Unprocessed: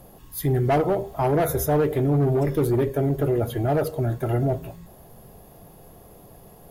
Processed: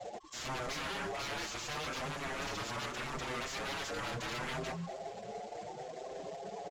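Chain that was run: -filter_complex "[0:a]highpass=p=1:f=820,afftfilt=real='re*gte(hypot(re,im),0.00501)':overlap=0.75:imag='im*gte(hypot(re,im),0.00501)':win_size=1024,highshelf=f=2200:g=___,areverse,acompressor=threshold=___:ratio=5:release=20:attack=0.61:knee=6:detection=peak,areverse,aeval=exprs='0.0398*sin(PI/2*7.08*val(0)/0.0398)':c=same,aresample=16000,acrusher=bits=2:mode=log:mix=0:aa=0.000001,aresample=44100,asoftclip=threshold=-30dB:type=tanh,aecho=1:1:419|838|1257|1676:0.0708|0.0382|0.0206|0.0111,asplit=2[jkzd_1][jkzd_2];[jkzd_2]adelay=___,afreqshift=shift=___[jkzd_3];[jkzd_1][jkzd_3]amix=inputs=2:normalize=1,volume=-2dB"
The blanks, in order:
9.5, -38dB, 6.6, 0.74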